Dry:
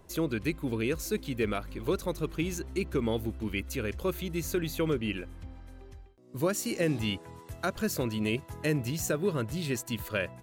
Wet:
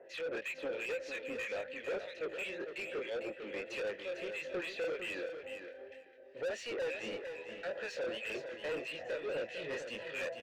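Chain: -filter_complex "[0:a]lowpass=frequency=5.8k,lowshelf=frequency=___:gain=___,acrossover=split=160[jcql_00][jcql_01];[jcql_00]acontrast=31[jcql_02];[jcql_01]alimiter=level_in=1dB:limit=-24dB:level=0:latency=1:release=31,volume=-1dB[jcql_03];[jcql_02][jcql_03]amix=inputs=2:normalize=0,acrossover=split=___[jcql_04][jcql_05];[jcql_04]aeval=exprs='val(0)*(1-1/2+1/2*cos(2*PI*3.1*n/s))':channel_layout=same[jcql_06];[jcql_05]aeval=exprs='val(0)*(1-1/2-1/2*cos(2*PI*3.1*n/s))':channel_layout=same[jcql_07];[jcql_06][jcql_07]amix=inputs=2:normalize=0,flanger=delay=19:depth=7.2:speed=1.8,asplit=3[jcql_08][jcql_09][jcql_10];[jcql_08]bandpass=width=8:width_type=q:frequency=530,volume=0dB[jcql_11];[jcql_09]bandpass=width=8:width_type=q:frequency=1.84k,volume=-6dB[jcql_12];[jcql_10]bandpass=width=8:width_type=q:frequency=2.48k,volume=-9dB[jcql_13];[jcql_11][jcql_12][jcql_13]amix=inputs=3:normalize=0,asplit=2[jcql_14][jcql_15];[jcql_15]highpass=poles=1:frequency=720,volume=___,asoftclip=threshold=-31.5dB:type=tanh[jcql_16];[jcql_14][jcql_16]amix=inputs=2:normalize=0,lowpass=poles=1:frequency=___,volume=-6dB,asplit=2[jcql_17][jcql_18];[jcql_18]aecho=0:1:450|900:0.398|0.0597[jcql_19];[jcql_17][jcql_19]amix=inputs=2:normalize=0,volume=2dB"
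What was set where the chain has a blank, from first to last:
300, -9, 1600, 32dB, 2.7k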